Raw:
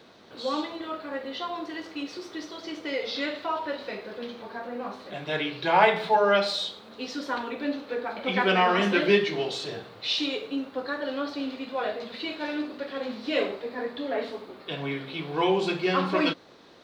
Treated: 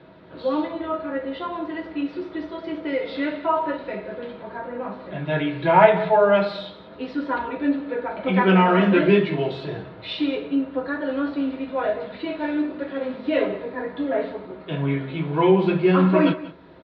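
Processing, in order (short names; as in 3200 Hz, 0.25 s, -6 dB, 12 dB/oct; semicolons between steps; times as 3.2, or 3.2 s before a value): air absorption 430 m; echo 0.185 s -17 dB; on a send at -2.5 dB: reverb RT60 0.10 s, pre-delay 3 ms; on the sum: gain +4 dB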